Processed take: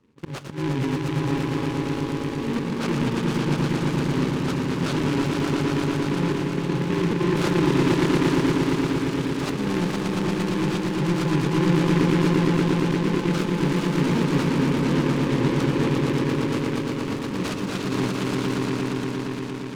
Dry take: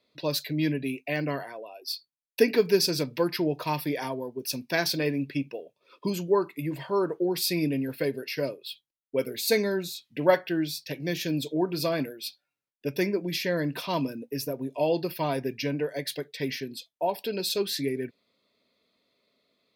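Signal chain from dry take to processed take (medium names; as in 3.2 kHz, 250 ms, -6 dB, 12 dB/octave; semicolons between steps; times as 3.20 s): bit-reversed sample order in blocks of 64 samples; Bessel low-pass 2.4 kHz, order 4; tilt shelf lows +7 dB, about 1.1 kHz; in parallel at +1.5 dB: compressor with a negative ratio -32 dBFS, ratio -0.5; on the sum: slow attack 208 ms; saturation -21.5 dBFS, distortion -14 dB; on a send: echo with a slow build-up 116 ms, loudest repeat 5, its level -4 dB; on the sum: delay time shaken by noise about 1.7 kHz, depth 0.084 ms; trim +2 dB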